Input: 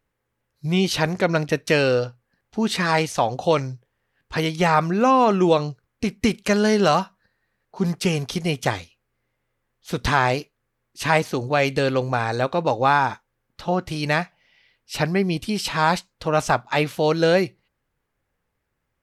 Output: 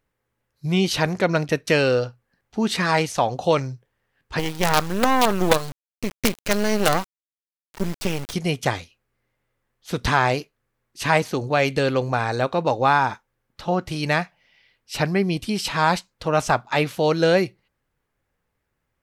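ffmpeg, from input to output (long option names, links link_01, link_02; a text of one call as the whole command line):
ffmpeg -i in.wav -filter_complex "[0:a]asettb=1/sr,asplit=3[link_01][link_02][link_03];[link_01]atrim=end=4.394[link_04];[link_02]atrim=start=4.39:end=8.33,asetpts=PTS-STARTPTS,afade=type=in:duration=0.004:curve=qsin,afade=type=out:start_time=3.936:duration=0.004:curve=qsin,acrusher=bits=3:dc=4:mix=0:aa=0.000001[link_05];[link_03]atrim=start=8.326[link_06];[link_04][link_05]acrossfade=duration=0.004:curve1=hsin:curve2=qsin[link_07];[link_07][link_06]acrossfade=duration=0.004:curve1=qsin:curve2=hsin" out.wav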